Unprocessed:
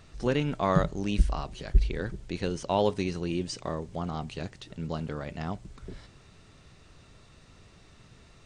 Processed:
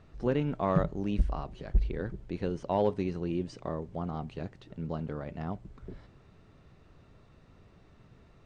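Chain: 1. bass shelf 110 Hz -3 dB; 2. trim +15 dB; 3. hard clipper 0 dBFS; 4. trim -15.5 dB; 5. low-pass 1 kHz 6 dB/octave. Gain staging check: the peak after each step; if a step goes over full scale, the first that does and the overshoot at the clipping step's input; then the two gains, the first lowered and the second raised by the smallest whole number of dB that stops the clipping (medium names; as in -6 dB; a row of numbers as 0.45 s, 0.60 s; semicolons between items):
-10.0 dBFS, +5.0 dBFS, 0.0 dBFS, -15.5 dBFS, -15.5 dBFS; step 2, 5.0 dB; step 2 +10 dB, step 4 -10.5 dB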